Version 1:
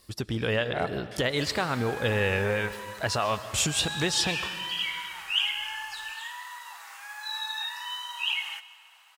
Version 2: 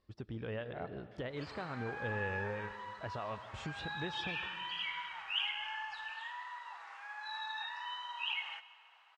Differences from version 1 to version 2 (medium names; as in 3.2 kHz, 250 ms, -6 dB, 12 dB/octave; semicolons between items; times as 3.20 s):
speech -11.5 dB; master: add tape spacing loss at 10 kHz 32 dB